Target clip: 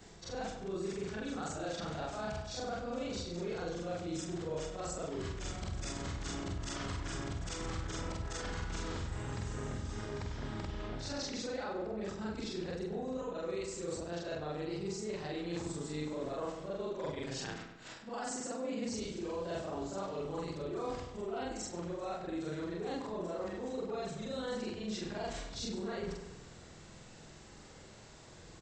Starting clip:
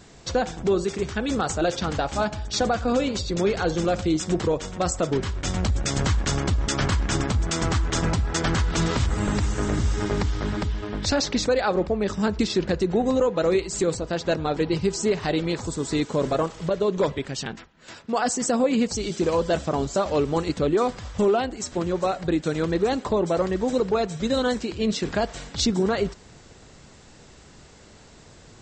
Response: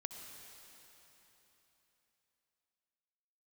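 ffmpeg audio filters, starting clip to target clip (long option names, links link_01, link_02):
-filter_complex "[0:a]afftfilt=real='re':imag='-im':win_size=4096:overlap=0.75,bandreject=frequency=60:width_type=h:width=6,bandreject=frequency=120:width_type=h:width=6,bandreject=frequency=180:width_type=h:width=6,bandreject=frequency=240:width_type=h:width=6,bandreject=frequency=300:width_type=h:width=6,areverse,acompressor=threshold=-37dB:ratio=5,areverse,asplit=2[link_01][link_02];[link_02]adelay=99,lowpass=frequency=4000:poles=1,volume=-8dB,asplit=2[link_03][link_04];[link_04]adelay=99,lowpass=frequency=4000:poles=1,volume=0.54,asplit=2[link_05][link_06];[link_06]adelay=99,lowpass=frequency=4000:poles=1,volume=0.54,asplit=2[link_07][link_08];[link_08]adelay=99,lowpass=frequency=4000:poles=1,volume=0.54,asplit=2[link_09][link_10];[link_10]adelay=99,lowpass=frequency=4000:poles=1,volume=0.54,asplit=2[link_11][link_12];[link_12]adelay=99,lowpass=frequency=4000:poles=1,volume=0.54[link_13];[link_01][link_03][link_05][link_07][link_09][link_11][link_13]amix=inputs=7:normalize=0,volume=-1dB"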